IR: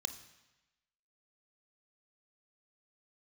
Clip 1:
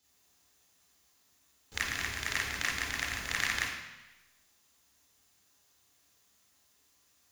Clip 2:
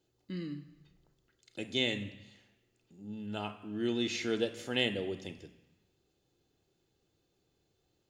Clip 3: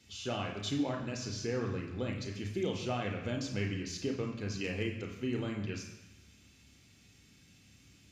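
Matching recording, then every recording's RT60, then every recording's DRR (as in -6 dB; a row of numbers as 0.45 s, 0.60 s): 2; 1.0 s, 1.0 s, 1.0 s; -7.5 dB, 8.5 dB, 1.0 dB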